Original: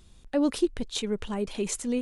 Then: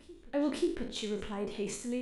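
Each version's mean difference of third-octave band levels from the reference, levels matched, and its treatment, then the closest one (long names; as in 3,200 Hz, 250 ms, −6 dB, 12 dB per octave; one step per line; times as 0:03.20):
5.0 dB: peak hold with a decay on every bin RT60 0.50 s
bass and treble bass −2 dB, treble −6 dB
backwards echo 535 ms −21.5 dB
level −6.5 dB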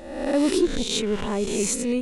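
7.0 dB: peak hold with a rise ahead of every peak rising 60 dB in 0.91 s
notch filter 3,100 Hz, Q 28
in parallel at −6.5 dB: soft clipping −20.5 dBFS, distortion −14 dB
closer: first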